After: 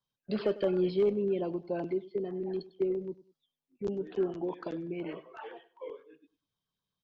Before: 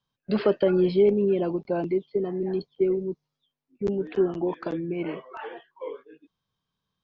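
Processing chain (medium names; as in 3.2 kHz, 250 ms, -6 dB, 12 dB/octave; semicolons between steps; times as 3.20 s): bass shelf 410 Hz -4.5 dB; in parallel at -4.5 dB: overload inside the chain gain 17.5 dB; on the sum: LFO notch saw down 7.8 Hz 760–2800 Hz; feedback delay 99 ms, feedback 29%, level -18.5 dB; trim -8.5 dB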